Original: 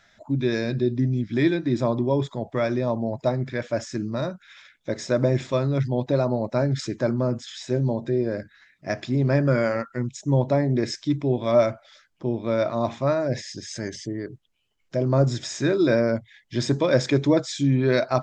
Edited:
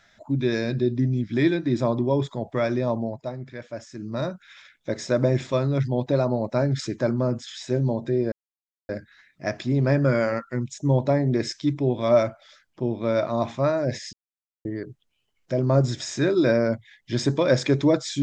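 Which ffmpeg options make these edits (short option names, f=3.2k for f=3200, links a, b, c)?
-filter_complex "[0:a]asplit=6[a][b][c][d][e][f];[a]atrim=end=3.23,asetpts=PTS-STARTPTS,afade=t=out:st=2.99:d=0.24:silence=0.354813[g];[b]atrim=start=3.23:end=3.97,asetpts=PTS-STARTPTS,volume=-9dB[h];[c]atrim=start=3.97:end=8.32,asetpts=PTS-STARTPTS,afade=t=in:d=0.24:silence=0.354813,afade=t=out:st=4.346:d=0.004:c=hsin,apad=pad_dur=0.57[i];[d]atrim=start=8.32:end=13.56,asetpts=PTS-STARTPTS,afade=t=in:d=0.004:c=hsin,afade=t=out:st=5.236:d=0.004:c=hsin[j];[e]atrim=start=13.56:end=14.08,asetpts=PTS-STARTPTS,volume=0[k];[f]atrim=start=14.08,asetpts=PTS-STARTPTS,afade=t=in:d=0.004:c=hsin[l];[g][h][i][j][k][l]concat=n=6:v=0:a=1"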